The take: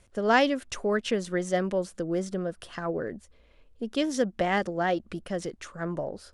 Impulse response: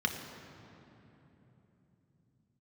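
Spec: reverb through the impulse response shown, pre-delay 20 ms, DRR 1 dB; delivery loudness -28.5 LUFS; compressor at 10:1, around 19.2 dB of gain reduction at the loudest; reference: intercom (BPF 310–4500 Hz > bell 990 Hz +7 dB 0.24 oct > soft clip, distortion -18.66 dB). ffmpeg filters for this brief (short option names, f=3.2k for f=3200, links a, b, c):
-filter_complex "[0:a]acompressor=threshold=-37dB:ratio=10,asplit=2[a][b];[1:a]atrim=start_sample=2205,adelay=20[c];[b][c]afir=irnorm=-1:irlink=0,volume=-8.5dB[d];[a][d]amix=inputs=2:normalize=0,highpass=310,lowpass=4.5k,equalizer=f=990:t=o:w=0.24:g=7,asoftclip=threshold=-30.5dB,volume=13.5dB"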